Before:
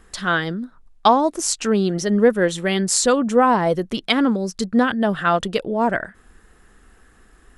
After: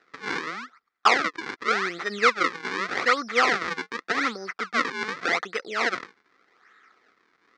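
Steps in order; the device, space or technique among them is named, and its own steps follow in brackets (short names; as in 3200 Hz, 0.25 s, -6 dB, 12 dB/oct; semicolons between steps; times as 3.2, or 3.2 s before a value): circuit-bent sampling toy (decimation with a swept rate 39×, swing 160% 0.85 Hz; speaker cabinet 570–5400 Hz, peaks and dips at 600 Hz -10 dB, 900 Hz -7 dB, 1300 Hz +9 dB, 2000 Hz +9 dB, 2900 Hz -6 dB); gain -2.5 dB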